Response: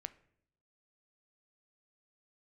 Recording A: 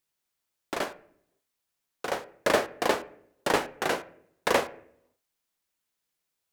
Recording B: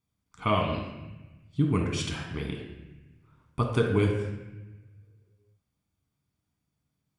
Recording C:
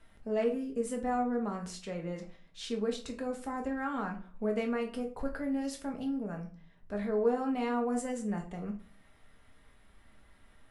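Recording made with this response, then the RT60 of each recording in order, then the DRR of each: A; 0.70, 1.1, 0.45 seconds; 12.5, 0.5, 1.0 decibels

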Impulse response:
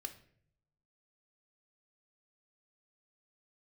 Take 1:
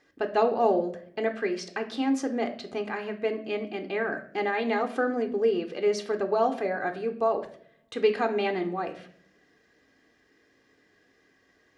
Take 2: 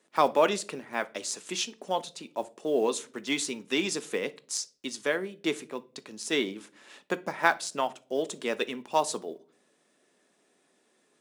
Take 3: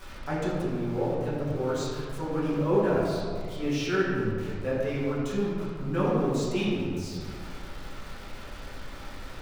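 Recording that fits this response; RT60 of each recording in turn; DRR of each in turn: 1; 0.60 s, non-exponential decay, 2.2 s; 7.0, 13.0, −9.5 decibels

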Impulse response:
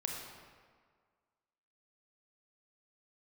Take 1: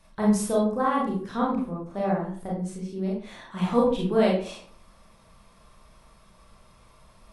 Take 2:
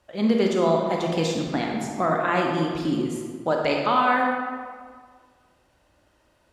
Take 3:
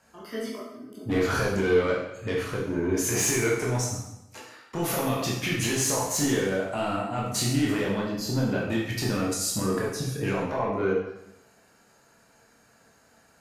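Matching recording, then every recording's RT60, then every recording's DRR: 2; 0.50, 1.8, 0.85 seconds; −4.5, 0.0, −4.5 decibels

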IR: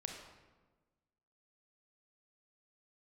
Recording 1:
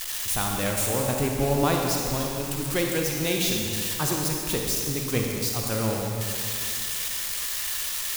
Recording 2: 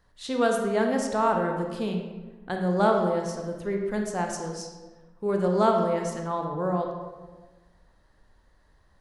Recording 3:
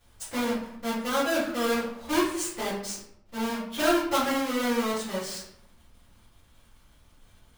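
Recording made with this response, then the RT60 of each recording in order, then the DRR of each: 2; 2.3, 1.3, 0.75 seconds; 0.0, 2.0, −11.0 decibels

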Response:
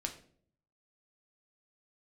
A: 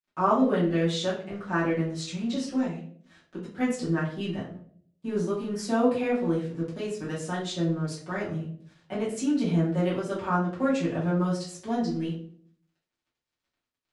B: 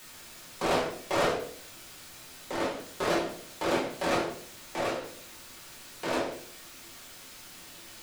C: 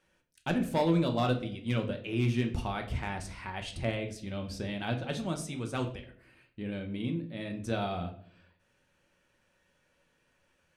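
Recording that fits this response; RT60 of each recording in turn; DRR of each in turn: C; 0.55, 0.55, 0.55 seconds; −10.0, −5.5, 3.5 decibels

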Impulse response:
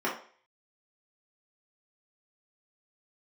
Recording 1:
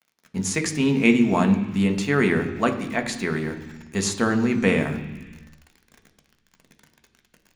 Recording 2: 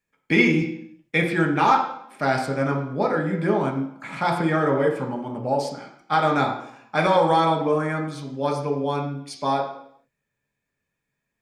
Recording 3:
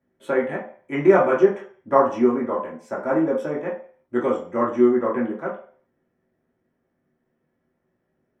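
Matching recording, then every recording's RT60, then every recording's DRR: 3; 1.2, 0.70, 0.45 seconds; 5.0, 1.0, −6.5 decibels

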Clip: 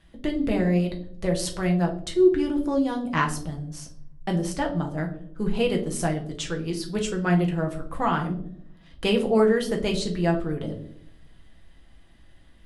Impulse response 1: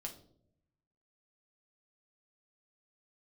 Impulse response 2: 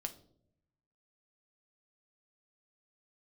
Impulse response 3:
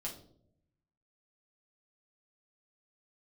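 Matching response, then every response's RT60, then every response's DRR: 1; non-exponential decay, non-exponential decay, 0.70 s; 1.5, 6.5, −3.0 decibels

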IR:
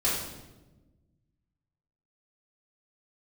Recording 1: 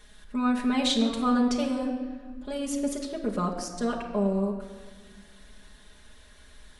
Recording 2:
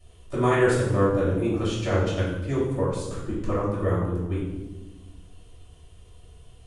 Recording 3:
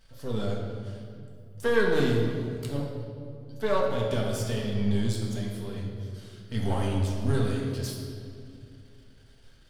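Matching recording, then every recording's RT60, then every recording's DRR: 2; 1.6, 1.1, 2.5 seconds; −3.0, −9.0, −2.5 decibels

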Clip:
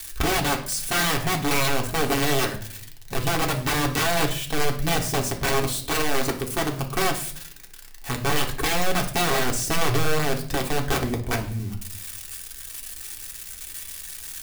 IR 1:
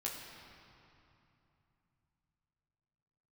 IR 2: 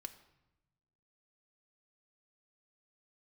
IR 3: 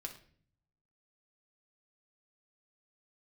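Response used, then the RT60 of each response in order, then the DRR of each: 3; 2.9, 0.95, 0.50 seconds; −4.0, 7.0, 1.0 decibels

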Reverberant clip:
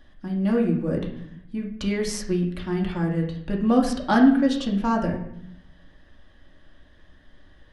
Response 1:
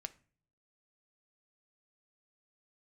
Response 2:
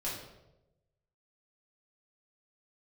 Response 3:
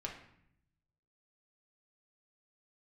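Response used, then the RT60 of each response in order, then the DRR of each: 3; 0.45, 0.95, 0.70 seconds; 9.0, −8.0, −1.5 decibels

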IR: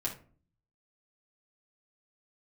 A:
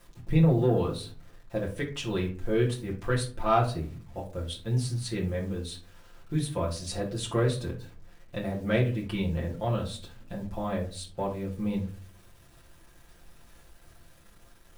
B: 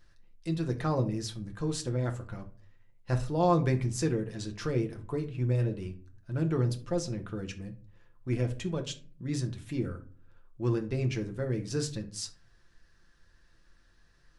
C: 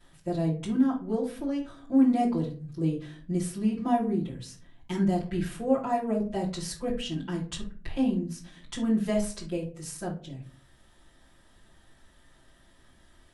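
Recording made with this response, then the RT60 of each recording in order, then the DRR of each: A; 0.40, 0.40, 0.40 seconds; −4.0, 4.0, −11.0 decibels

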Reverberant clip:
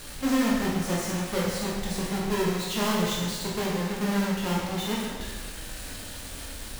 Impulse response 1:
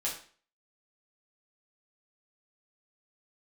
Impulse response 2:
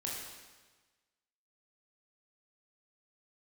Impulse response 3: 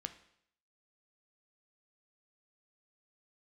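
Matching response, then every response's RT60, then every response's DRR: 2; 0.45, 1.3, 0.70 seconds; −6.0, −4.0, 8.5 decibels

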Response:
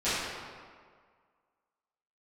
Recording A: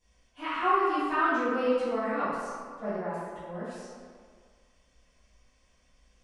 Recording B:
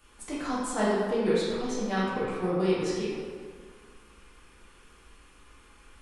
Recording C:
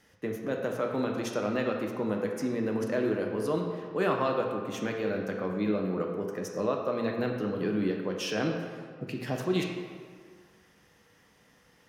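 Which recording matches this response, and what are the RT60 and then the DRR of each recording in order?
A; 1.8, 1.8, 1.8 seconds; −16.0, −9.0, 1.0 decibels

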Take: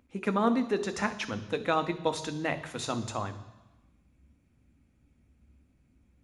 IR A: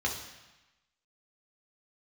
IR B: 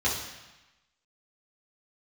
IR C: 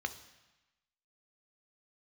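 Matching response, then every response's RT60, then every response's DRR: C; 1.1, 1.1, 1.1 seconds; −1.0, −7.5, 8.5 decibels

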